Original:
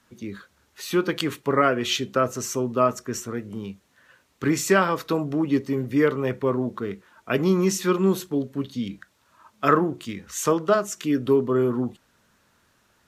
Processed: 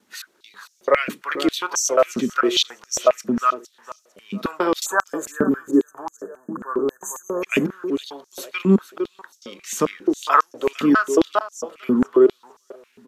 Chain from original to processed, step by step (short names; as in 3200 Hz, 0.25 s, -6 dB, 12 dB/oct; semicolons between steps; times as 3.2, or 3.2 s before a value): slices in reverse order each 0.219 s, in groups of 4; spectral delete 4.86–7.42, 1800–6100 Hz; feedback echo 0.456 s, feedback 28%, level -13 dB; stepped high-pass 7.4 Hz 220–5900 Hz